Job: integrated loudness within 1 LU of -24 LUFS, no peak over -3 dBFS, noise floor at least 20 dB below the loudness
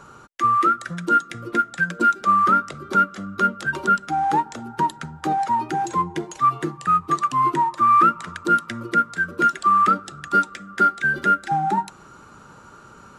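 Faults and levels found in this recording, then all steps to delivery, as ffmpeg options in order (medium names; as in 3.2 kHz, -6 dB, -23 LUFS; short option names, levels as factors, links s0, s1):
loudness -20.5 LUFS; peak level -6.5 dBFS; loudness target -24.0 LUFS
-> -af "volume=0.668"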